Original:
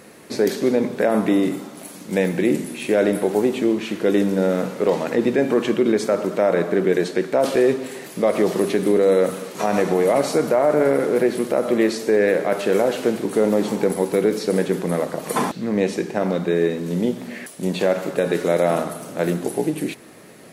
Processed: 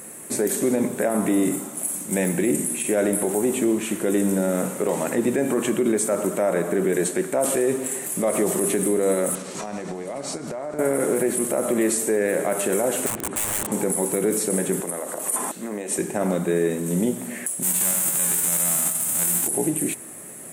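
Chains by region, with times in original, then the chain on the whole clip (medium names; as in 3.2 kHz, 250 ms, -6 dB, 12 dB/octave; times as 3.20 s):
9.35–10.79 s: compression 5:1, threshold -29 dBFS + resonant low-pass 4.9 kHz, resonance Q 3.2 + bass shelf 170 Hz +5.5 dB
13.06–13.72 s: low-pass 3.1 kHz + integer overflow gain 18.5 dB
14.80–15.99 s: high-pass 310 Hz + band-stop 2.3 kHz, Q 25 + compression 10:1, threshold -24 dBFS
17.62–19.46 s: formants flattened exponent 0.3 + band-stop 5.7 kHz, Q 26
whole clip: resonant high shelf 6.4 kHz +11 dB, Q 3; band-stop 470 Hz, Q 12; peak limiter -12 dBFS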